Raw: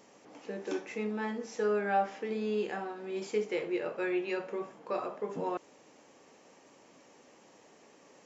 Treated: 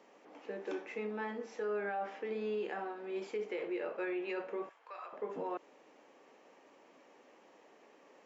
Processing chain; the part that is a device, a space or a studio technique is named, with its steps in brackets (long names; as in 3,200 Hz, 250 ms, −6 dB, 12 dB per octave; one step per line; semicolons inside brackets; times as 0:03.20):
DJ mixer with the lows and highs turned down (three-way crossover with the lows and the highs turned down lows −18 dB, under 230 Hz, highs −13 dB, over 3,600 Hz; brickwall limiter −28.5 dBFS, peak gain reduction 9.5 dB)
0:04.69–0:05.13: high-pass filter 1,200 Hz 12 dB per octave
level −1.5 dB